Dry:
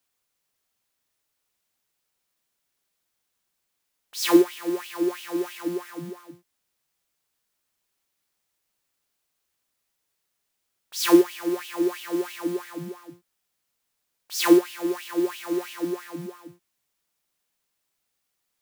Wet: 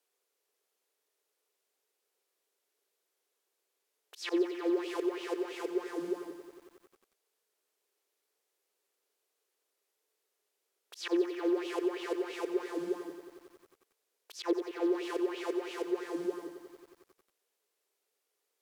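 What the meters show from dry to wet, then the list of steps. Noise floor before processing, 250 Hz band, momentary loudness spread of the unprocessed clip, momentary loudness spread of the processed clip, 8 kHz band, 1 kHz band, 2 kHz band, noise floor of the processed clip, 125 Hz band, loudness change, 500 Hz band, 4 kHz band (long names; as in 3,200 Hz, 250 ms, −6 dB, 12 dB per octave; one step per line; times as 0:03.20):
−79 dBFS, −10.5 dB, 19 LU, 16 LU, −17.0 dB, −9.0 dB, −8.5 dB, −83 dBFS, below −20 dB, −10.0 dB, −7.5 dB, −11.5 dB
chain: treble cut that deepens with the level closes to 2,100 Hz, closed at −20.5 dBFS
volume swells 211 ms
downward compressor, threshold −28 dBFS, peak gain reduction 11 dB
high-pass with resonance 420 Hz, resonance Q 4.9
feedback echo at a low word length 91 ms, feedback 80%, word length 9 bits, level −11.5 dB
level −4 dB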